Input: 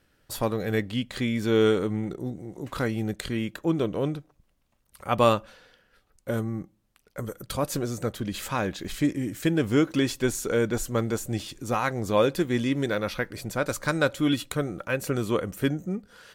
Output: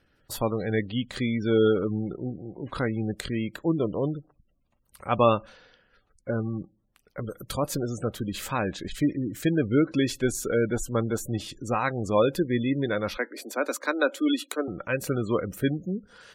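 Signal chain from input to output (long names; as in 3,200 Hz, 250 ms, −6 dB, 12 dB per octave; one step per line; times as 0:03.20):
gate on every frequency bin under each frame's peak −25 dB strong
0:13.17–0:14.68: Butterworth high-pass 240 Hz 72 dB per octave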